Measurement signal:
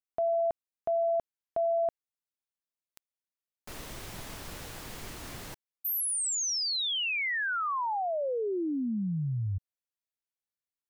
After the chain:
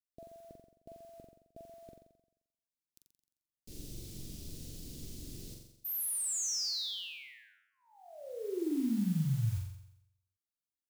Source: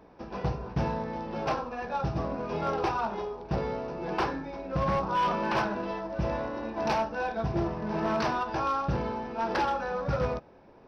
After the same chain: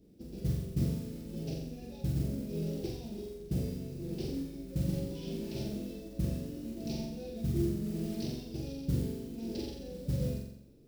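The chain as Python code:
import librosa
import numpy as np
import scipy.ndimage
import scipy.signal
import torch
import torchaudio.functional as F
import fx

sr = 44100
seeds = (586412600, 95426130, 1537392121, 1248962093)

y = scipy.signal.sosfilt(scipy.signal.cheby1(2, 1.0, [310.0, 4500.0], 'bandstop', fs=sr, output='sos'), x)
y = fx.low_shelf(y, sr, hz=460.0, db=4.5)
y = fx.mod_noise(y, sr, seeds[0], snr_db=22)
y = fx.room_flutter(y, sr, wall_m=7.5, rt60_s=0.79)
y = y * 10.0 ** (-6.5 / 20.0)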